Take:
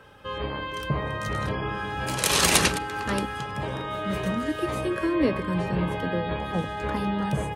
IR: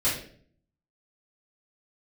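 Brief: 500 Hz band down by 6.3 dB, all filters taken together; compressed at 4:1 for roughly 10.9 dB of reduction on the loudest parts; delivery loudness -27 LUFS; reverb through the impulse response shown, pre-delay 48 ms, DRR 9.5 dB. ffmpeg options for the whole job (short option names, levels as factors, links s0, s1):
-filter_complex "[0:a]equalizer=f=500:t=o:g=-8.5,acompressor=threshold=0.0355:ratio=4,asplit=2[s0][s1];[1:a]atrim=start_sample=2205,adelay=48[s2];[s1][s2]afir=irnorm=-1:irlink=0,volume=0.0944[s3];[s0][s3]amix=inputs=2:normalize=0,volume=1.78"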